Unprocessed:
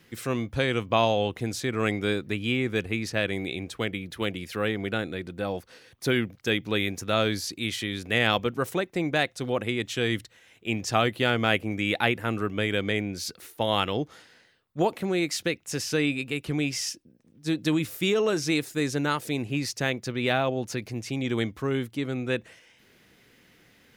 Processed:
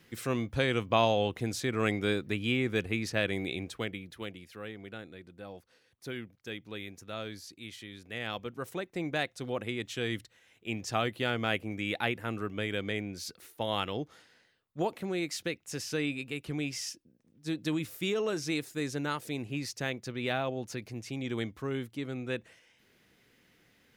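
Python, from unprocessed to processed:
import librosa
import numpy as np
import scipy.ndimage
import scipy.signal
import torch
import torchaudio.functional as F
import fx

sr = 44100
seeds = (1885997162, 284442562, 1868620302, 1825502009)

y = fx.gain(x, sr, db=fx.line((3.6, -3.0), (4.54, -15.0), (8.14, -15.0), (9.03, -7.0)))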